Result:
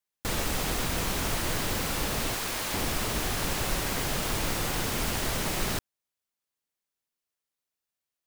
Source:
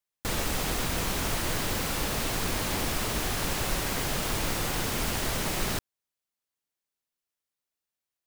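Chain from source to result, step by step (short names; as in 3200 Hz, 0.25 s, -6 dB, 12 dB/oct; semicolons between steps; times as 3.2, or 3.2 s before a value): 2.34–2.74 low shelf 350 Hz -11 dB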